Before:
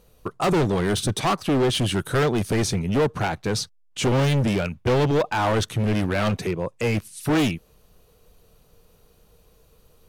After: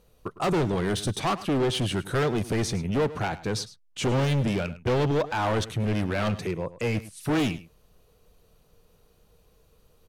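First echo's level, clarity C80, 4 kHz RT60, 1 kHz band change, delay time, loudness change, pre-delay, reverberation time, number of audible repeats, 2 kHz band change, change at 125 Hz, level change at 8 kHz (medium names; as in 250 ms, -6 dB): -16.5 dB, no reverb, no reverb, -4.0 dB, 105 ms, -4.0 dB, no reverb, no reverb, 1, -4.0 dB, -4.0 dB, -5.5 dB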